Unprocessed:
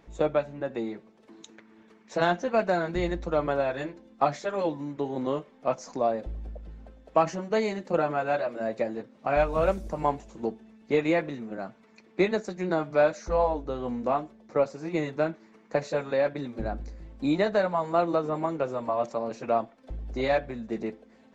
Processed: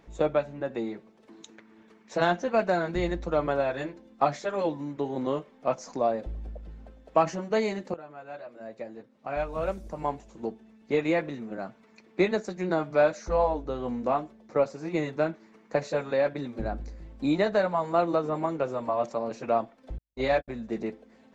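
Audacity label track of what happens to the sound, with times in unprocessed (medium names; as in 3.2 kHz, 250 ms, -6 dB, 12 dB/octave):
7.940000	11.580000	fade in, from -20.5 dB
19.980000	20.480000	gate -30 dBFS, range -56 dB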